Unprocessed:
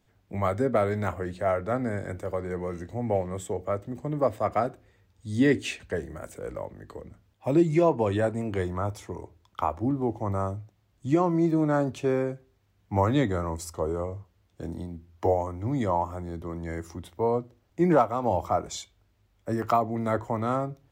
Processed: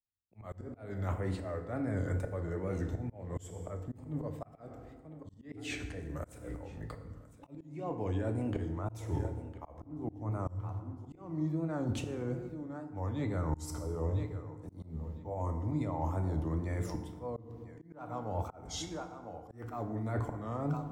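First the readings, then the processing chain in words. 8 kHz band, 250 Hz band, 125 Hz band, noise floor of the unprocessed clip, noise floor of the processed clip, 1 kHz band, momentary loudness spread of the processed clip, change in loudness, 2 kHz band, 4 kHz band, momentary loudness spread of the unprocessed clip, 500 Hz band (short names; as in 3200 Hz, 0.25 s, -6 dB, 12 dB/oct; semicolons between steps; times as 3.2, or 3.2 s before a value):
-6.5 dB, -10.0 dB, -4.0 dB, -67 dBFS, -56 dBFS, -14.0 dB, 14 LU, -10.5 dB, -11.5 dB, -6.5 dB, 15 LU, -13.5 dB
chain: gate -55 dBFS, range -45 dB; on a send: thinning echo 1.006 s, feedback 18%, high-pass 220 Hz, level -22 dB; on the sum: auto swell 0.352 s; wow and flutter 130 cents; reverse; compressor 20:1, threshold -35 dBFS, peak gain reduction 18 dB; reverse; low shelf 140 Hz +11 dB; FDN reverb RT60 1.4 s, low-frequency decay 1.2×, high-frequency decay 0.55×, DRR 6 dB; auto swell 0.255 s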